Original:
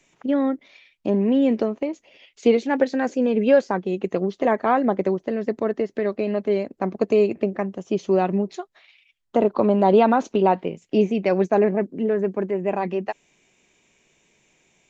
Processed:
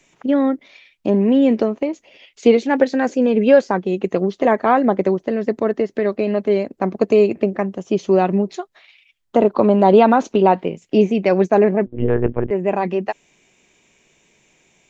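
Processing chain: 11.86–12.51 monotone LPC vocoder at 8 kHz 120 Hz; gain +4.5 dB

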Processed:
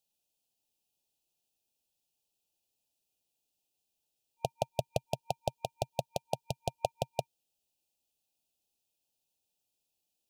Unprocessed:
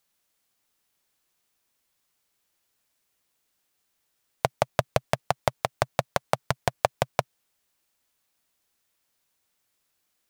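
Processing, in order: FFT band-reject 920–2400 Hz; gain -8 dB

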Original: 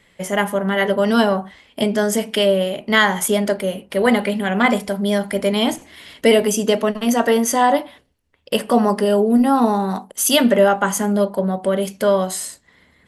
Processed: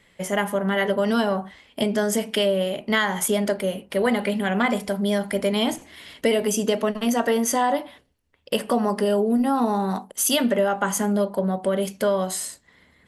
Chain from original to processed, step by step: compressor 4:1, threshold -15 dBFS, peak gain reduction 6 dB; gain -2.5 dB

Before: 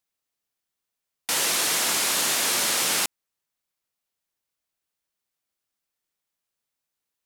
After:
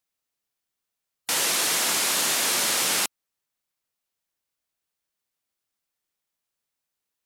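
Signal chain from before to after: spectral gate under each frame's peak -20 dB strong

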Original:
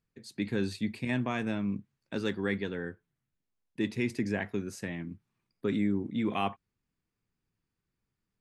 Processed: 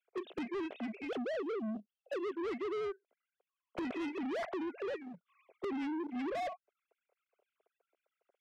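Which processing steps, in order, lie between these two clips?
sine-wave speech; notch 1800 Hz, Q 5.2; 3.82–5.68 transient shaper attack -3 dB, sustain +9 dB; gate -48 dBFS, range -17 dB; band shelf 520 Hz +14.5 dB 1.1 oct; limiter -20.5 dBFS, peak gain reduction 11.5 dB; flipped gate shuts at -38 dBFS, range -31 dB; sample leveller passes 1; 1.07–2.32 spectral gain 810–2600 Hz -20 dB; overdrive pedal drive 40 dB, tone 2700 Hz, clips at -30.5 dBFS; gain +1 dB

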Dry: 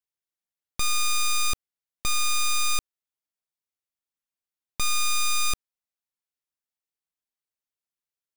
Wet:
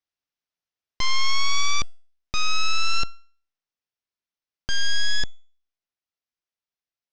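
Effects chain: speed glide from 73% -> 162%; Chebyshev low-pass 5900 Hz, order 4; resonator 680 Hz, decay 0.44 s, mix 50%; gain +8.5 dB

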